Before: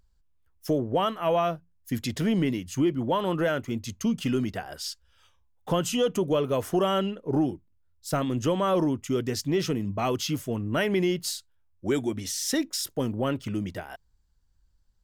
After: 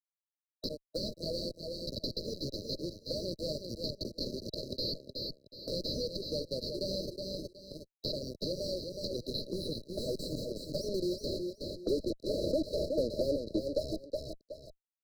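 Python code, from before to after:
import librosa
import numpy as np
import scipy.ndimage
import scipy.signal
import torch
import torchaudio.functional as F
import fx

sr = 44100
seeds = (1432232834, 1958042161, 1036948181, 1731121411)

y = scipy.signal.sosfilt(scipy.signal.butter(4, 240.0, 'highpass', fs=sr, output='sos'), x)
y = fx.low_shelf(y, sr, hz=470.0, db=-8.5)
y = fx.sample_hold(y, sr, seeds[0], rate_hz=9000.0, jitter_pct=0)
y = np.clip(y, -10.0 ** (-26.0 / 20.0), 10.0 ** (-26.0 / 20.0))
y = fx.filter_sweep_bandpass(y, sr, from_hz=4500.0, to_hz=710.0, start_s=9.04, end_s=12.59, q=6.4)
y = fx.fuzz(y, sr, gain_db=60.0, gate_db=-56.0)
y = fx.brickwall_bandstop(y, sr, low_hz=640.0, high_hz=3900.0)
y = fx.air_absorb(y, sr, metres=420.0)
y = fx.echo_feedback(y, sr, ms=369, feedback_pct=15, wet_db=-8.0)
y = fx.band_squash(y, sr, depth_pct=70)
y = F.gain(torch.from_numpy(y), -3.0).numpy()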